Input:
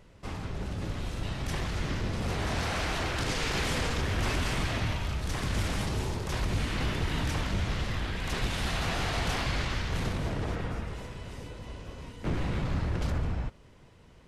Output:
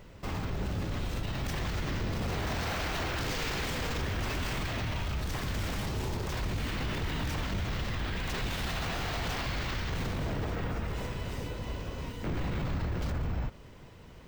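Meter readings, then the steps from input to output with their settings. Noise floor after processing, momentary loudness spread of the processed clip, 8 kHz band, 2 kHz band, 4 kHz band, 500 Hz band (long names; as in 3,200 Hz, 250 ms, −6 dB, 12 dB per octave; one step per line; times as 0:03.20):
−50 dBFS, 5 LU, −3.5 dB, −2.0 dB, −2.5 dB, −1.5 dB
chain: brickwall limiter −30.5 dBFS, peak gain reduction 10.5 dB
bad sample-rate conversion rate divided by 2×, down filtered, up hold
level +5 dB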